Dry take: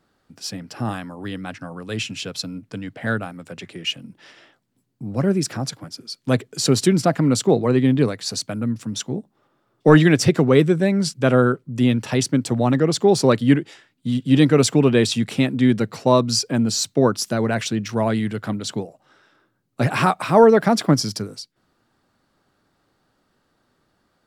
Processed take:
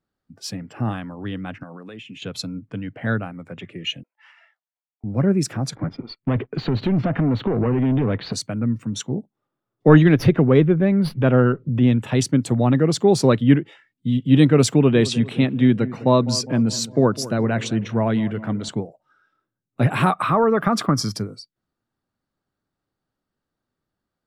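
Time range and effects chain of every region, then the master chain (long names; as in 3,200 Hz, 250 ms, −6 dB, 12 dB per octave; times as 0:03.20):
0:01.63–0:02.22: high-pass filter 190 Hz + downward compressor, threshold −34 dBFS
0:04.03–0:05.04: Butterworth high-pass 650 Hz + low-pass that shuts in the quiet parts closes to 1,900 Hz, open at −46.5 dBFS
0:05.75–0:08.33: downward compressor 20 to 1, threshold −22 dBFS + leveller curve on the samples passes 3 + high-frequency loss of the air 310 metres
0:09.95–0:11.92: high-frequency loss of the air 170 metres + upward compression, threshold −16 dBFS + windowed peak hold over 3 samples
0:14.74–0:18.69: high-pass filter 72 Hz 6 dB per octave + high-shelf EQ 10,000 Hz −6 dB + feedback echo with a low-pass in the loop 203 ms, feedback 56%, low-pass 1,600 Hz, level −16 dB
0:20.12–0:21.13: parametric band 1,200 Hz +14.5 dB 0.36 octaves + downward compressor 3 to 1, threshold −14 dBFS
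whole clip: noise reduction from a noise print of the clip's start 16 dB; low-shelf EQ 220 Hz +6.5 dB; level −2 dB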